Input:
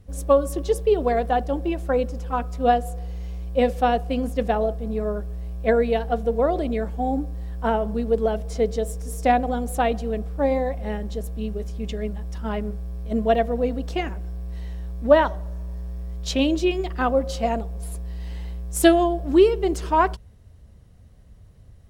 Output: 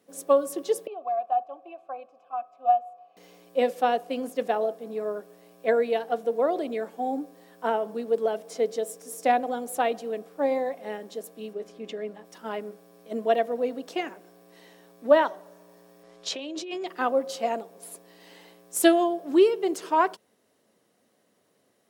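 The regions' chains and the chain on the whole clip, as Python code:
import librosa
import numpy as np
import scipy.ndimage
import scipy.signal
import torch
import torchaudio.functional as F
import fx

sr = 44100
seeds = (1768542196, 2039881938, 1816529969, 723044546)

y = fx.chain(x, sr, fx.vowel_filter(vowel='a'),
    fx.peak_eq(hz=1300.0, db=4.0, octaves=1.4),
    fx.notch_comb(f0_hz=470.0), at=(0.87, 3.17))
y = fx.chain(y, sr, fx.lowpass(hz=2600.0, slope=6),
    fx.env_flatten(amount_pct=50), at=(11.53, 12.25))
y = fx.chain(y, sr, fx.lowpass(hz=7000.0, slope=12),
    fx.peak_eq(hz=230.0, db=-13.0, octaves=0.37),
    fx.over_compress(threshold_db=-28.0, ratio=-1.0), at=(16.03, 16.87))
y = scipy.signal.sosfilt(scipy.signal.butter(4, 270.0, 'highpass', fs=sr, output='sos'), y)
y = fx.high_shelf(y, sr, hz=10000.0, db=5.0)
y = y * 10.0 ** (-3.0 / 20.0)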